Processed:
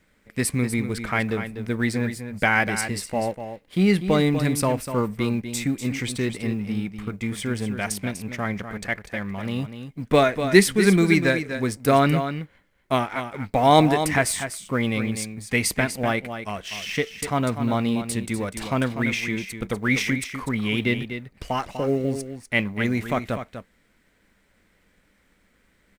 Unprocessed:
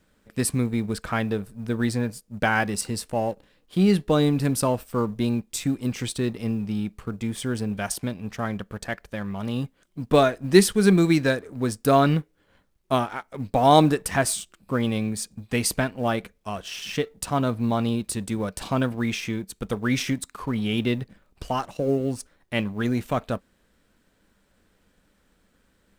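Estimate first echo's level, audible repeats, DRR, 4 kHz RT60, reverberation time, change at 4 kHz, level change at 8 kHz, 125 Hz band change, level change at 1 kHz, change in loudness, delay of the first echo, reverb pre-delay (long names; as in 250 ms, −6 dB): −9.5 dB, 1, no reverb audible, no reverb audible, no reverb audible, +1.5 dB, +0.5 dB, +0.5 dB, +1.0 dB, +1.0 dB, 246 ms, no reverb audible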